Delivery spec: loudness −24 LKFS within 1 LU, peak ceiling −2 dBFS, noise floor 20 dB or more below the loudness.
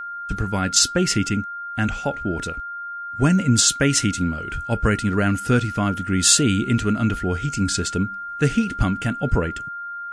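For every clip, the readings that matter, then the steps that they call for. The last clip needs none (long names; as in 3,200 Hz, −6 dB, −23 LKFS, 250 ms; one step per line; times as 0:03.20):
interfering tone 1,400 Hz; level of the tone −29 dBFS; integrated loudness −21.0 LKFS; sample peak −3.5 dBFS; target loudness −24.0 LKFS
→ notch filter 1,400 Hz, Q 30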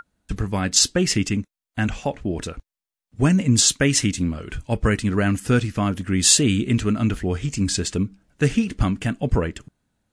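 interfering tone none found; integrated loudness −21.0 LKFS; sample peak −3.0 dBFS; target loudness −24.0 LKFS
→ level −3 dB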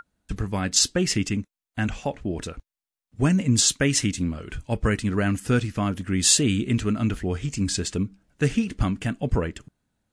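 integrated loudness −24.0 LKFS; sample peak −6.0 dBFS; background noise floor −91 dBFS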